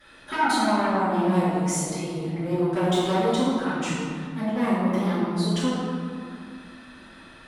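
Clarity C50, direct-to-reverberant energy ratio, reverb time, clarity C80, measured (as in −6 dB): −2.5 dB, −16.5 dB, 2.2 s, −0.5 dB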